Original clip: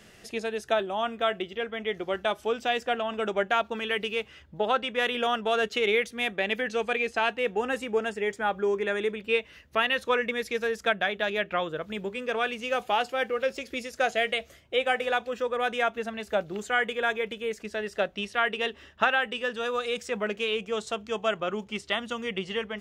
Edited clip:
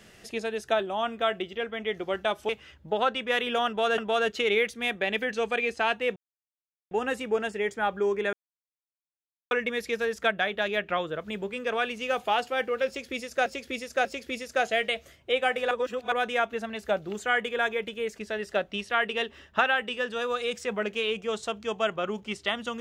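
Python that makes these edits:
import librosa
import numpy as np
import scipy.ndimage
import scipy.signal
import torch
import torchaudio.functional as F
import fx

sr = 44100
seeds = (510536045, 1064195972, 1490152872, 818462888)

y = fx.edit(x, sr, fx.cut(start_s=2.49, length_s=1.68),
    fx.repeat(start_s=5.35, length_s=0.31, count=2),
    fx.insert_silence(at_s=7.53, length_s=0.75),
    fx.silence(start_s=8.95, length_s=1.18),
    fx.repeat(start_s=13.49, length_s=0.59, count=3),
    fx.reverse_span(start_s=15.15, length_s=0.41), tone=tone)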